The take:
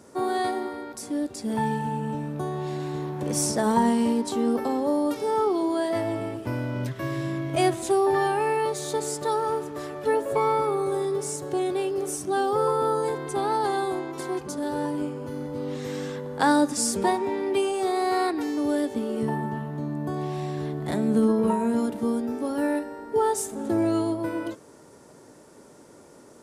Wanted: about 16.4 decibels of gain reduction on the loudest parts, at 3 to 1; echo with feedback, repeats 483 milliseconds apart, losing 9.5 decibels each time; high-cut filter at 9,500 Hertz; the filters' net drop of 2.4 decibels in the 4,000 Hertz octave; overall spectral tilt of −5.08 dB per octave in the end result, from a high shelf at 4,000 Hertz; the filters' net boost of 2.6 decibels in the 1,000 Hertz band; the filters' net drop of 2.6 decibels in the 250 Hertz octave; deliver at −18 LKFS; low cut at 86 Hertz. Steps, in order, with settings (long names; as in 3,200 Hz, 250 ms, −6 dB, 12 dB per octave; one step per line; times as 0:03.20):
high-pass filter 86 Hz
low-pass filter 9,500 Hz
parametric band 250 Hz −3.5 dB
parametric band 1,000 Hz +3.5 dB
high-shelf EQ 4,000 Hz +5.5 dB
parametric band 4,000 Hz −7 dB
downward compressor 3 to 1, threshold −38 dBFS
repeating echo 483 ms, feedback 33%, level −9.5 dB
level +19 dB